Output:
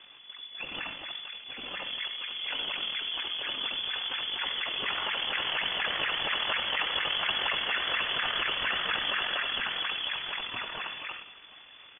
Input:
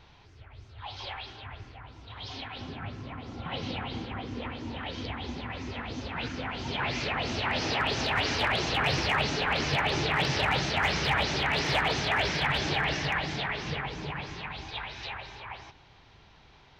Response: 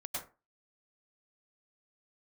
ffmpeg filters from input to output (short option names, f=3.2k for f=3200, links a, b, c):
-filter_complex "[0:a]acompressor=threshold=-33dB:ratio=2.5,equalizer=f=100:t=o:w=0.67:g=-5,equalizer=f=250:t=o:w=0.67:g=-4,equalizer=f=1k:t=o:w=0.67:g=-5,equalizer=f=2.5k:t=o:w=0.67:g=-3,asplit=2[a][b];[1:a]atrim=start_sample=2205[c];[b][c]afir=irnorm=-1:irlink=0,volume=-6dB[d];[a][d]amix=inputs=2:normalize=0,tremolo=f=46:d=0.519,lowpass=f=3k:t=q:w=0.5098,lowpass=f=3k:t=q:w=0.6013,lowpass=f=3k:t=q:w=0.9,lowpass=f=3k:t=q:w=2.563,afreqshift=-3500,bandreject=f=50:t=h:w=6,bandreject=f=100:t=h:w=6,bandreject=f=150:t=h:w=6,bandreject=f=200:t=h:w=6,bandreject=f=250:t=h:w=6,aecho=1:1:1036|2072:0.0794|0.0254,atempo=1.4,volume=6.5dB"